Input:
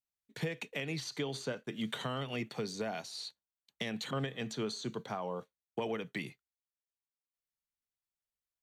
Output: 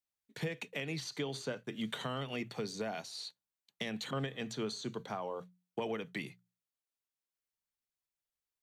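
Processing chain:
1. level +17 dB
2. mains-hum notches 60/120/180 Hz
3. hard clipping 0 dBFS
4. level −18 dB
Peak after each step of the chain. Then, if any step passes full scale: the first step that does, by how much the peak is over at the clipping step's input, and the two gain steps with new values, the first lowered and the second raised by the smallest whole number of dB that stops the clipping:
−5.5, −5.5, −5.5, −23.5 dBFS
no step passes full scale

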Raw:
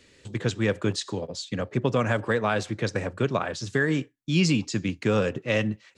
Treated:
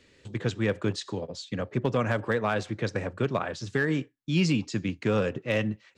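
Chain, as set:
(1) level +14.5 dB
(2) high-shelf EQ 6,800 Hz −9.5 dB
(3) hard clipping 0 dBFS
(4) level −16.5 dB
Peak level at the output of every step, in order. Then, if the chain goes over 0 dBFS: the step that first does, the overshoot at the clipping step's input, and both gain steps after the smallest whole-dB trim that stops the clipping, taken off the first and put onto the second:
+3.5, +3.0, 0.0, −16.5 dBFS
step 1, 3.0 dB
step 1 +11.5 dB, step 4 −13.5 dB

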